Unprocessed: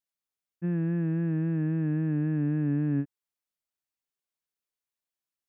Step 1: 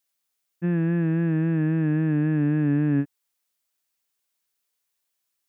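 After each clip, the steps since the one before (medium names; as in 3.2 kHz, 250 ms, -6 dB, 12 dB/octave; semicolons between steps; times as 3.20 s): tilt EQ +1.5 dB/octave; trim +8.5 dB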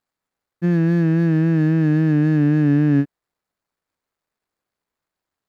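median filter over 15 samples; trim +6 dB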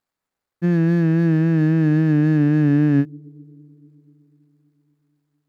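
on a send at -17 dB: four-pole ladder low-pass 430 Hz, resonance 50% + reverberation RT60 4.0 s, pre-delay 28 ms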